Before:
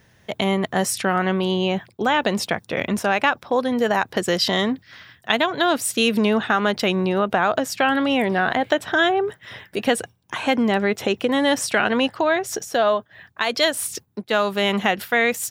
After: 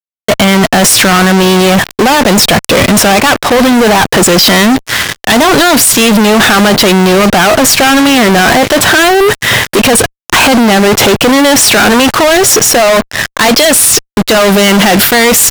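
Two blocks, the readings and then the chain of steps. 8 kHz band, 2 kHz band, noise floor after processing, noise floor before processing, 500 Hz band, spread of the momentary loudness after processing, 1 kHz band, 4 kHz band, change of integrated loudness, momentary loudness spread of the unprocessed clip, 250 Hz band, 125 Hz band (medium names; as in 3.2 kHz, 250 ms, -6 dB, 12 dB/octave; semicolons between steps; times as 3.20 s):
+22.5 dB, +14.0 dB, -66 dBFS, -57 dBFS, +13.0 dB, 4 LU, +13.5 dB, +16.5 dB, +15.0 dB, 6 LU, +15.0 dB, +16.5 dB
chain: waveshaping leveller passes 2; compressor with a negative ratio -19 dBFS, ratio -1; fuzz box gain 40 dB, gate -43 dBFS; trim +8.5 dB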